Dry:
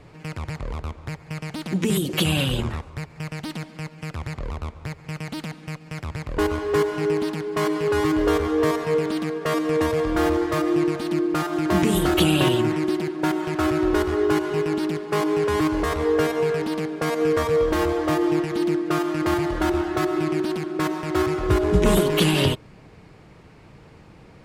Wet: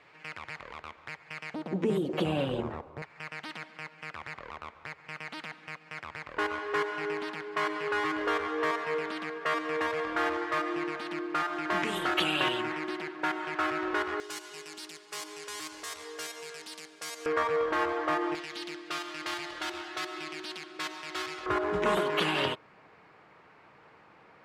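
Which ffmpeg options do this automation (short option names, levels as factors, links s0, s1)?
-af "asetnsamples=n=441:p=0,asendcmd='1.54 bandpass f 570;3.02 bandpass f 1700;14.2 bandpass f 7000;17.26 bandpass f 1400;18.35 bandpass f 3700;21.46 bandpass f 1300',bandpass=f=2000:t=q:w=1:csg=0"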